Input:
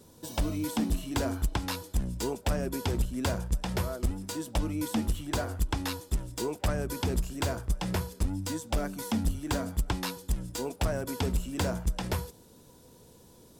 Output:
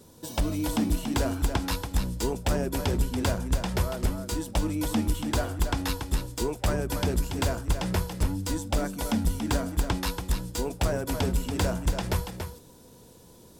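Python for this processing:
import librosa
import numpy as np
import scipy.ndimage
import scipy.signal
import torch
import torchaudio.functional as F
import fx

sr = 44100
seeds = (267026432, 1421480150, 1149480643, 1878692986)

y = x + 10.0 ** (-7.0 / 20.0) * np.pad(x, (int(283 * sr / 1000.0), 0))[:len(x)]
y = y * 10.0 ** (2.5 / 20.0)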